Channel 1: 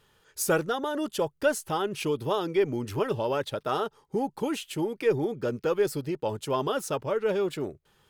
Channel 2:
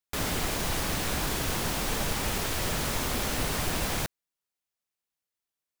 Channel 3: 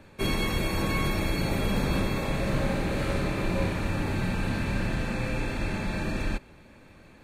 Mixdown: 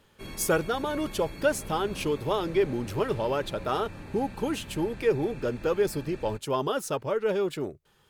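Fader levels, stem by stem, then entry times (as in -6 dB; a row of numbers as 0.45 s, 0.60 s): 0.0 dB, mute, -14.0 dB; 0.00 s, mute, 0.00 s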